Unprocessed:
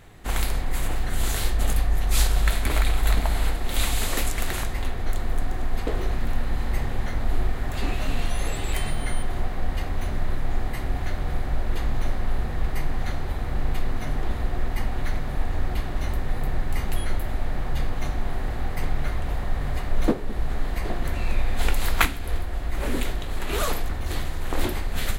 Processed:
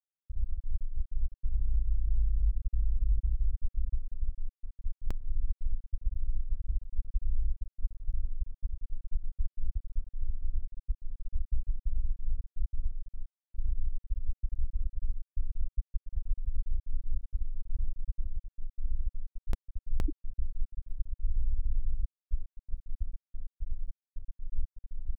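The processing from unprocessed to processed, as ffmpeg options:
-filter_complex "[0:a]asettb=1/sr,asplit=3[s0][s1][s2];[s0]atrim=end=7.704[s3];[s1]atrim=start=7.7:end=13.53,asetpts=PTS-STARTPTS,afade=t=in:d=0.004:c=qsin,afade=t=out:st=5.826:d=0.004:c=qsin,aecho=1:1:81|162|243:0.178|0.0587|0.0194,atrim=end_sample=257103[s4];[s2]atrim=start=13.526[s5];[s3][s4]acrossfade=d=0.004:c1=hsin:c2=qsin[s6];[s6][s5]acrossfade=d=0.004:c1=qsin:c2=hsin,afftfilt=real='re*gte(hypot(re,im),1.26)':imag='im*gte(hypot(re,im),1.26)':win_size=1024:overlap=0.75,alimiter=limit=0.106:level=0:latency=1:release=47"

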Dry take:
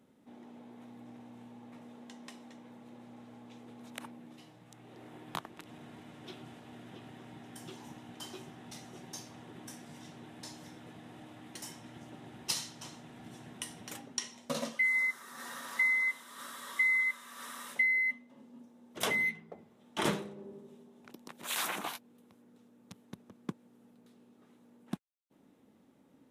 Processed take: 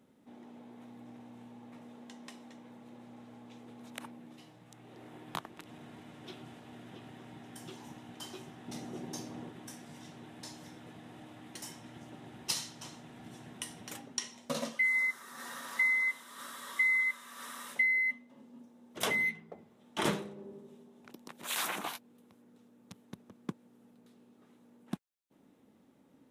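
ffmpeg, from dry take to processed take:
-filter_complex "[0:a]asettb=1/sr,asplit=3[s0][s1][s2];[s0]atrim=end=8.684[s3];[s1]atrim=start=8.68:end=9.49,asetpts=PTS-STARTPTS,afade=t=in:d=0.004:c=qsin,afade=t=out:st=0.806:d=0.004:c=qsin,equalizer=f=300:w=0.5:g=9[s4];[s2]atrim=start=9.486[s5];[s3][s4]acrossfade=d=0.004:c1=hsin:c2=qsin[s6];[s6][s5]acrossfade=d=0.004:c1=qsin:c2=hsin"

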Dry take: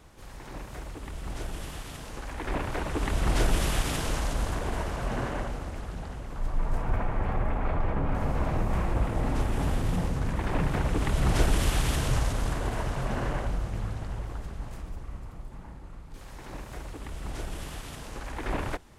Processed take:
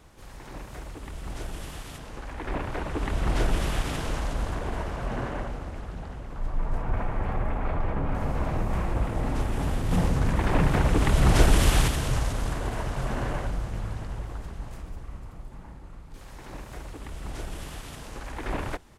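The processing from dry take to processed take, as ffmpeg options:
-filter_complex "[0:a]asettb=1/sr,asplit=3[s0][s1][s2];[s0]atrim=end=1.984[s3];[s1]atrim=start=1.98:end=6.97,asetpts=PTS-STARTPTS,afade=t=in:d=0.004:c=qsin,afade=t=out:st=4.986:d=0.004:c=qsin,highshelf=f=4600:g=-7.5[s4];[s2]atrim=start=6.966[s5];[s3][s4]acrossfade=d=0.004:c1=hsin:c2=qsin[s6];[s6][s5]acrossfade=d=0.004:c1=qsin:c2=hsin,asplit=2[s7][s8];[s8]afade=t=in:st=12.4:d=0.01,afade=t=out:st=12.94:d=0.01,aecho=0:1:560|1120|1680|2240|2800:0.375837|0.169127|0.0761071|0.0342482|0.0154117[s9];[s7][s9]amix=inputs=2:normalize=0,asplit=3[s10][s11][s12];[s10]atrim=end=9.912[s13];[s11]atrim=start=9.908:end=11.882,asetpts=PTS-STARTPTS,volume=1.78[s14];[s12]atrim=start=11.878[s15];[s13][s14]acrossfade=d=0.004:c1=hsin:c2=hsin[s16];[s16][s15]acrossfade=d=0.004:c1=hsin:c2=hsin"

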